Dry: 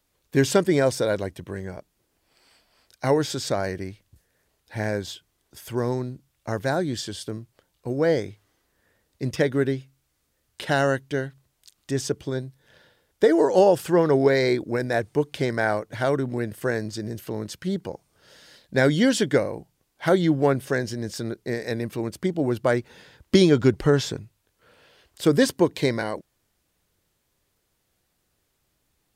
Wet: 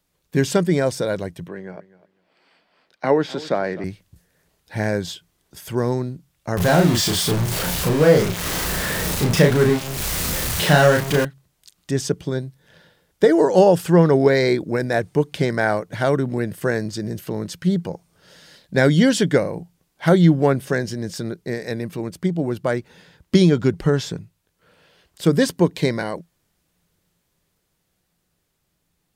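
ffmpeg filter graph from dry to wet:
-filter_complex "[0:a]asettb=1/sr,asplit=3[a][b][c];[a]atrim=end=1.484[d];[b]atrim=start=1.48:end=3.84,asetpts=PTS-STARTPTS,afade=t=in:d=0.004:c=qsin,afade=t=out:st=2.356:d=0.004:c=qsin,acrossover=split=190 3800:gain=0.1 1 0.1[e][f][g];[e][f][g]amix=inputs=3:normalize=0,aecho=1:1:253|506:0.112|0.0202,atrim=end_sample=104076[h];[c]atrim=start=3.836[i];[d][h]acrossfade=d=0.004:c1=hsin:c2=qsin[j];[j][i]acrossfade=d=0.004:c1=qsin:c2=hsin,asettb=1/sr,asplit=3[k][l][m];[k]atrim=end=6.574[n];[l]atrim=start=6.57:end=11.25,asetpts=PTS-STARTPTS,afade=t=in:d=0.004:c=qsin,afade=t=out:st=4.676:d=0.004:c=qsin,aeval=exprs='val(0)+0.5*0.075*sgn(val(0))':c=same,equalizer=f=290:w=5.2:g=-5,asplit=2[o][p];[p]adelay=34,volume=-3dB[q];[o][q]amix=inputs=2:normalize=0,atrim=end_sample=206388[r];[m]atrim=start=11.246[s];[n][r]acrossfade=d=0.004:c1=hsin:c2=qsin[t];[t][s]acrossfade=d=0.004:c1=qsin:c2=hsin,equalizer=f=170:t=o:w=0.27:g=11,dynaudnorm=f=230:g=17:m=5dB"

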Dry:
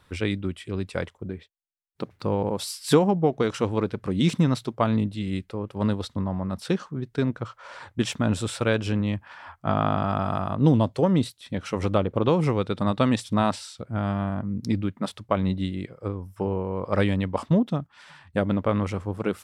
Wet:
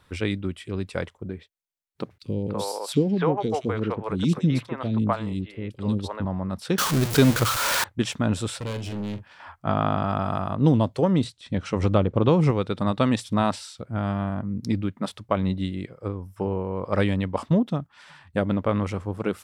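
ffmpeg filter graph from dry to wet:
-filter_complex "[0:a]asettb=1/sr,asplit=3[a][b][c];[a]atrim=end=2.184[d];[b]atrim=start=2.18:end=6.25,asetpts=PTS-STARTPTS,afade=t=in:d=0.004:c=qsin,afade=t=out:st=4.066:d=0.004:c=qsin,acrossover=split=460|2800[e][f][g];[e]adelay=40[h];[f]adelay=290[i];[h][i][g]amix=inputs=3:normalize=0,atrim=end_sample=179487,adynamicequalizer=threshold=0.00398:dfrequency=3800:dqfactor=0.7:tfrequency=3800:tqfactor=0.7:attack=5:release=100:ratio=0.375:range=2.5:mode=cutabove:tftype=highshelf[j];[c]atrim=start=6.246[k];[d][j]acrossfade=d=0.004:c1=hsin:c2=qsin[l];[l][k]acrossfade=d=0.004:c1=qsin:c2=hsin,asettb=1/sr,asplit=3[m][n][o];[m]atrim=end=6.784[p];[n]atrim=start=6.78:end=7.84,asetpts=PTS-STARTPTS,afade=t=in:d=0.004:c=qsin,afade=t=out:st=1.056:d=0.004:c=qsin,aeval=exprs='val(0)+0.5*0.0299*sgn(val(0))':c=same,acontrast=63,highshelf=f=2.8k:g=10[q];[o]atrim=start=7.836[r];[p][q]acrossfade=d=0.004:c1=hsin:c2=qsin[s];[s][r]acrossfade=d=0.004:c1=qsin:c2=hsin,asettb=1/sr,asplit=3[t][u][v];[t]atrim=end=8.584[w];[u]atrim=start=8.58:end=9.4,asetpts=PTS-STARTPTS,afade=t=in:d=0.004:c=qsin,afade=t=out:st=0.816:d=0.004:c=qsin,equalizer=f=1.1k:w=0.82:g=-10.5,asoftclip=type=hard:threshold=-28.5dB,asplit=2[x][y];[y]adelay=44,volume=-10dB[z];[x][z]amix=inputs=2:normalize=0,atrim=end_sample=36162[aa];[v]atrim=start=9.396[ab];[w][aa]acrossfade=d=0.004:c1=hsin:c2=qsin[ac];[ac][ab]acrossfade=d=0.004:c1=qsin:c2=hsin,asettb=1/sr,asplit=3[ad][ae][af];[ad]atrim=end=11.244[ag];[ae]atrim=start=11.24:end=12.51,asetpts=PTS-STARTPTS,afade=t=in:d=0.004:c=qsin,afade=t=out:st=1.266:d=0.004:c=qsin,lowpass=f=8.7k:w=0.5412,lowpass=f=8.7k:w=1.3066,lowshelf=f=230:g=6[ah];[af]atrim=start=12.506[ai];[ag][ah]acrossfade=d=0.004:c1=hsin:c2=qsin[aj];[aj][ai]acrossfade=d=0.004:c1=qsin:c2=hsin"

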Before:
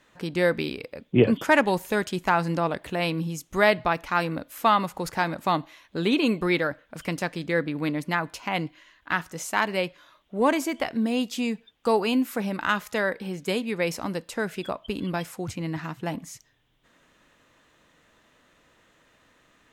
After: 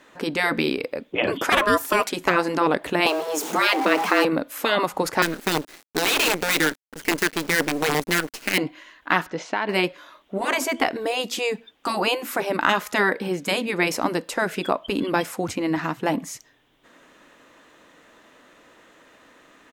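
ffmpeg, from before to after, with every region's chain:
-filter_complex "[0:a]asettb=1/sr,asplit=3[a][b][c];[a]atrim=end=1.524[d];[b]atrim=start=1.52:end=2.1,asetpts=PTS-STARTPTS,afade=t=in:d=0.004:c=qsin,afade=t=out:st=0.576:d=0.004:c=qsin,highshelf=f=8.3k:g=10,aeval=exprs='val(0)*sin(2*PI*830*n/s)':c=same[e];[c]atrim=start=2.096[f];[d][e]acrossfade=d=0.004:c1=hsin:c2=qsin[g];[g][f]acrossfade=d=0.004:c1=qsin:c2=hsin,asettb=1/sr,asplit=3[h][i][j];[h]atrim=end=3.064[k];[i]atrim=start=3.06:end=4.25,asetpts=PTS-STARTPTS,afade=t=in:d=0.004:c=qsin,afade=t=out:st=1.186:d=0.004:c=qsin,aeval=exprs='val(0)+0.5*0.0188*sgn(val(0))':c=same,equalizer=f=700:t=o:w=0.62:g=8.5,afreqshift=150[l];[j]atrim=start=4.246[m];[k][l]acrossfade=d=0.004:c1=hsin:c2=qsin[n];[n][m]acrossfade=d=0.004:c1=qsin:c2=hsin,asettb=1/sr,asplit=3[o][p][q];[o]atrim=end=5.224[r];[p]atrim=start=5.22:end=8.58,asetpts=PTS-STARTPTS,afade=t=in:d=0.004:c=qsin,afade=t=out:st=3.356:d=0.004:c=qsin,asuperstop=centerf=810:order=20:qfactor=0.87,acrusher=bits=5:dc=4:mix=0:aa=0.000001[s];[q]atrim=start=8.576[t];[r][s]acrossfade=d=0.004:c1=hsin:c2=qsin[u];[u][t]acrossfade=d=0.004:c1=qsin:c2=hsin,asettb=1/sr,asplit=3[v][w][x];[v]atrim=end=9.264[y];[w]atrim=start=9.26:end=9.69,asetpts=PTS-STARTPTS,afade=t=in:d=0.004:c=qsin,afade=t=out:st=0.426:d=0.004:c=qsin,lowpass=f=4.5k:w=0.5412,lowpass=f=4.5k:w=1.3066,bandreject=f=1.2k:w=8.1,acompressor=threshold=-29dB:ratio=6:attack=3.2:release=140:knee=1:detection=peak[z];[x]atrim=start=9.686[aa];[y][z]acrossfade=d=0.004:c1=hsin:c2=qsin[ab];[ab][aa]acrossfade=d=0.004:c1=qsin:c2=hsin,afftfilt=real='re*lt(hypot(re,im),0.316)':imag='im*lt(hypot(re,im),0.316)':win_size=1024:overlap=0.75,firequalizer=gain_entry='entry(110,0);entry(270,12);entry(3100,8)':delay=0.05:min_phase=1,volume=-1.5dB"

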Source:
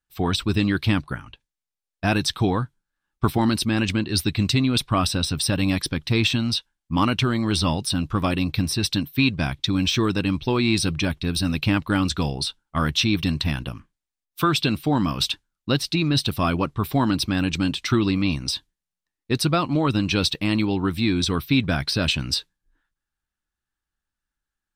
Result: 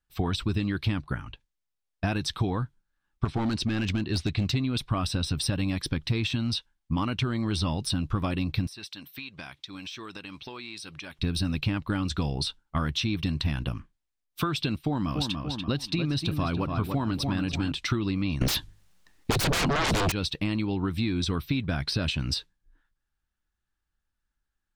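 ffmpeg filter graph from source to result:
-filter_complex "[0:a]asettb=1/sr,asplit=3[a][b][c];[a]atrim=end=3.254[d];[b]atrim=start=3.25:end=4.55,asetpts=PTS-STARTPTS,afade=t=in:d=0.004:c=qsin,afade=t=out:st=1.296:d=0.004:c=qsin,lowpass=f=7.6k:w=0.5412,lowpass=f=7.6k:w=1.3066,volume=17.5dB,asoftclip=hard,volume=-17.5dB[e];[c]atrim=start=4.546[f];[d][e]acrossfade=d=0.004:c1=hsin:c2=qsin[g];[g][f]acrossfade=d=0.004:c1=qsin:c2=hsin,asettb=1/sr,asplit=3[h][i][j];[h]atrim=end=8.674[k];[i]atrim=start=8.67:end=11.19,asetpts=PTS-STARTPTS,afade=t=in:d=0.004:c=qsin,afade=t=out:st=2.516:d=0.004:c=qsin,highpass=f=1.1k:p=1,acompressor=threshold=-38dB:ratio=4:attack=3.2:release=140:knee=1:detection=peak[l];[j]atrim=start=11.186[m];[k][l]acrossfade=d=0.004:c1=hsin:c2=qsin[n];[n][m]acrossfade=d=0.004:c1=qsin:c2=hsin,asettb=1/sr,asplit=3[o][p][q];[o]atrim=end=14.764[r];[p]atrim=start=14.76:end=17.72,asetpts=PTS-STARTPTS,afade=t=in:d=0.004:c=qsin,afade=t=out:st=2.956:d=0.004:c=qsin,agate=range=-33dB:threshold=-37dB:ratio=3:release=100:detection=peak,asplit=2[s][t];[t]adelay=289,lowpass=f=2.6k:p=1,volume=-7dB,asplit=2[u][v];[v]adelay=289,lowpass=f=2.6k:p=1,volume=0.37,asplit=2[w][x];[x]adelay=289,lowpass=f=2.6k:p=1,volume=0.37,asplit=2[y][z];[z]adelay=289,lowpass=f=2.6k:p=1,volume=0.37[aa];[s][u][w][y][aa]amix=inputs=5:normalize=0,atrim=end_sample=130536[ab];[q]atrim=start=17.716[ac];[r][ab]acrossfade=d=0.004:c1=hsin:c2=qsin[ad];[ad][ac]acrossfade=d=0.004:c1=qsin:c2=hsin,asettb=1/sr,asplit=3[ae][af][ag];[ae]atrim=end=18.414[ah];[af]atrim=start=18.41:end=20.12,asetpts=PTS-STARTPTS,afade=t=in:d=0.004:c=qsin,afade=t=out:st=1.706:d=0.004:c=qsin,bandreject=f=50:t=h:w=6,bandreject=f=100:t=h:w=6,bandreject=f=150:t=h:w=6,aeval=exprs='0.335*sin(PI/2*8.91*val(0)/0.335)':c=same[ai];[ag]atrim=start=20.116[aj];[ah][ai]acrossfade=d=0.004:c1=hsin:c2=qsin[ak];[ak][aj]acrossfade=d=0.004:c1=qsin:c2=hsin,highshelf=f=8.3k:g=-7.5,acompressor=threshold=-26dB:ratio=6,lowshelf=f=110:g=6.5"

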